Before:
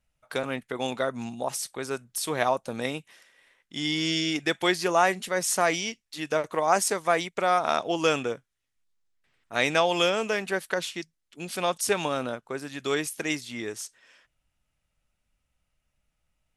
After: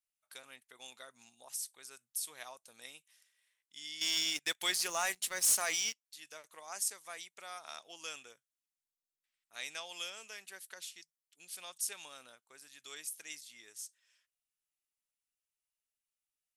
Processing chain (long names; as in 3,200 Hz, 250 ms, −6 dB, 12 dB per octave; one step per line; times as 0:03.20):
first-order pre-emphasis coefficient 0.97
0:04.01–0:06.05: leveller curve on the samples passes 3
level −7.5 dB